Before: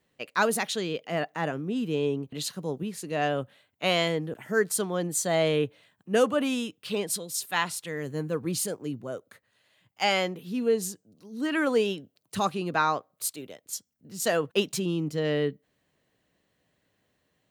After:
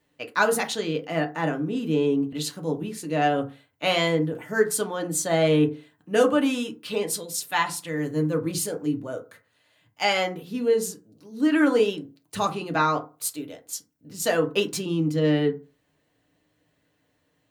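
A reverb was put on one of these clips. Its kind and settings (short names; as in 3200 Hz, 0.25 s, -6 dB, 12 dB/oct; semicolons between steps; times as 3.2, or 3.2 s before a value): FDN reverb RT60 0.32 s, low-frequency decay 1.1×, high-frequency decay 0.45×, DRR 3 dB; gain +1 dB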